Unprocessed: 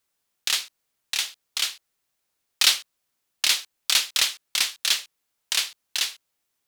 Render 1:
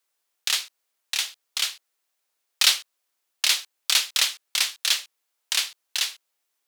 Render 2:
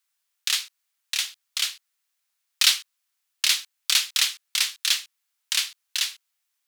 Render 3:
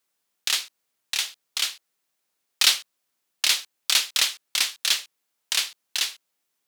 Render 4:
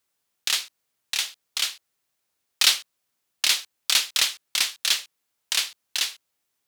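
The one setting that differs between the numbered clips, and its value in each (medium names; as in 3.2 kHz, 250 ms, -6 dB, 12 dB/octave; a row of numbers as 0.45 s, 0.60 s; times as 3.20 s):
high-pass, cutoff frequency: 400 Hz, 1.2 kHz, 150 Hz, 53 Hz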